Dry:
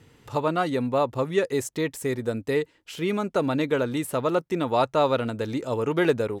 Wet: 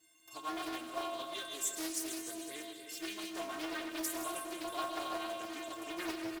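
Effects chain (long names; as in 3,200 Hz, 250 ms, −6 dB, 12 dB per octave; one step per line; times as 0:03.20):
turntable brake at the end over 0.33 s
RIAA equalisation recording
stiff-string resonator 320 Hz, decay 0.48 s, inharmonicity 0.03
in parallel at −11.5 dB: wrap-around overflow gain 42 dB
on the sum: noise that follows the level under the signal 23 dB
on a send: repeating echo 317 ms, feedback 45%, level −10 dB
on the sum: comb and all-pass reverb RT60 2 s, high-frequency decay 0.9×, pre-delay 70 ms, DRR 3.5 dB
highs frequency-modulated by the lows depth 0.45 ms
level +2.5 dB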